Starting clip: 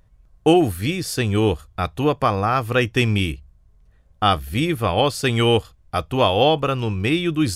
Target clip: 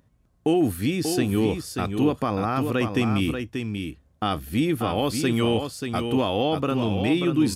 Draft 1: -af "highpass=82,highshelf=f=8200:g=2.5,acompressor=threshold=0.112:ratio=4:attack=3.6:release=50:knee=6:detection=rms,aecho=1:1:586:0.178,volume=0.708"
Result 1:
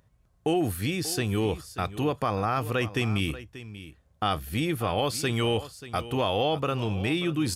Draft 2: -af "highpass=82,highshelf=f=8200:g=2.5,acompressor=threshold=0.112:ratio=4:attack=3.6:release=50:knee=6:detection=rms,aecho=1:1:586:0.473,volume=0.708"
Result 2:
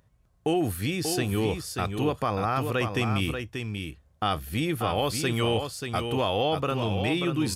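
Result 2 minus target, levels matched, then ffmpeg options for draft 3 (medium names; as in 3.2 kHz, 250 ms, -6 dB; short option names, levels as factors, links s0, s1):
250 Hz band -3.5 dB
-af "highpass=82,highshelf=f=8200:g=2.5,acompressor=threshold=0.112:ratio=4:attack=3.6:release=50:knee=6:detection=rms,equalizer=f=260:t=o:w=0.93:g=9,aecho=1:1:586:0.473,volume=0.708"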